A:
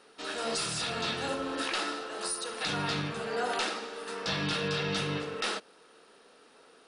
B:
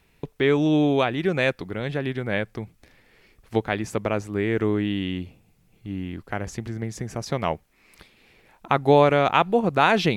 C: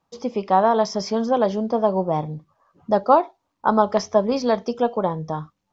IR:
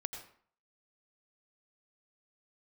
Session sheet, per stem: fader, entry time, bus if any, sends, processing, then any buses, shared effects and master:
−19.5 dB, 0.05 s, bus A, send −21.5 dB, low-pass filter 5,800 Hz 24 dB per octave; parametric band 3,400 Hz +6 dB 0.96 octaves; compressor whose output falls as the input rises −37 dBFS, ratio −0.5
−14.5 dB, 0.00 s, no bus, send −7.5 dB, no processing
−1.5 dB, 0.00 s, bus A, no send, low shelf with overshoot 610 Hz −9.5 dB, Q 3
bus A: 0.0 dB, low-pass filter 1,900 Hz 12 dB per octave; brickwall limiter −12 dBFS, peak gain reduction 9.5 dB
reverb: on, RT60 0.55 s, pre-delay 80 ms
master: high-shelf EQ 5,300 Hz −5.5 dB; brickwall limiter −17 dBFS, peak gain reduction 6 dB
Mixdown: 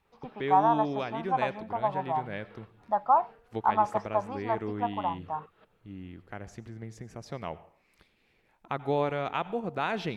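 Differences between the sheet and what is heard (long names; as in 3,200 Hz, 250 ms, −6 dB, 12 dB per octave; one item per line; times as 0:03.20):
stem C −1.5 dB → −8.5 dB
master: missing brickwall limiter −17 dBFS, peak gain reduction 6 dB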